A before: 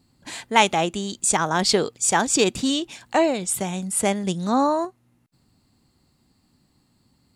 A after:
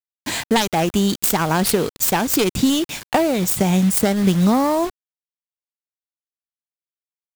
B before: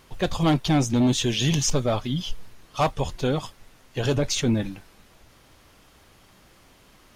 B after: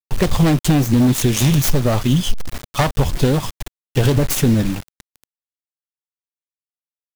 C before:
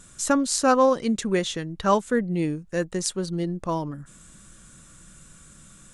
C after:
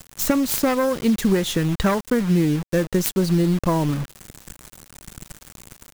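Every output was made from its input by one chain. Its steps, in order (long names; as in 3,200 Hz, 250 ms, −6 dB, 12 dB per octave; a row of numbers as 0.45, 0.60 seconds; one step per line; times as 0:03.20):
phase distortion by the signal itself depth 0.21 ms
downward compressor 12 to 1, threshold −26 dBFS
bit reduction 7 bits
low-shelf EQ 280 Hz +7 dB
normalise the peak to −3 dBFS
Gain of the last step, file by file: +10.5, +10.5, +8.0 decibels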